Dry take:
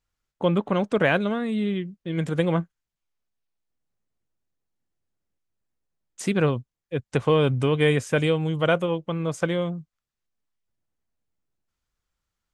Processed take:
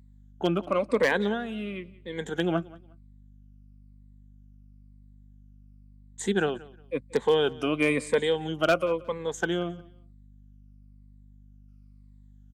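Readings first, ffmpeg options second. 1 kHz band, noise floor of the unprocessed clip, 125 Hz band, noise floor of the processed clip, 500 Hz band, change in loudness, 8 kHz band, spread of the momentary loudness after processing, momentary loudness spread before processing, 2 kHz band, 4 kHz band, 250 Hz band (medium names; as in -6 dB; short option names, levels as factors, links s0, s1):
-2.0 dB, under -85 dBFS, -11.0 dB, -53 dBFS, -2.0 dB, -3.5 dB, 0.0 dB, 12 LU, 10 LU, -1.5 dB, -1.0 dB, -5.0 dB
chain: -filter_complex "[0:a]afftfilt=real='re*pow(10,14/40*sin(2*PI*(0.98*log(max(b,1)*sr/1024/100)/log(2)-(-0.99)*(pts-256)/sr)))':imag='im*pow(10,14/40*sin(2*PI*(0.98*log(max(b,1)*sr/1024/100)/log(2)-(-0.99)*(pts-256)/sr)))':win_size=1024:overlap=0.75,highpass=f=210:w=0.5412,highpass=f=210:w=1.3066,aeval=exprs='val(0)+0.00398*(sin(2*PI*50*n/s)+sin(2*PI*2*50*n/s)/2+sin(2*PI*3*50*n/s)/3+sin(2*PI*4*50*n/s)/4+sin(2*PI*5*50*n/s)/5)':c=same,aeval=exprs='0.335*(abs(mod(val(0)/0.335+3,4)-2)-1)':c=same,asplit=2[s0][s1];[s1]aecho=0:1:180|360:0.0841|0.0202[s2];[s0][s2]amix=inputs=2:normalize=0,volume=0.631"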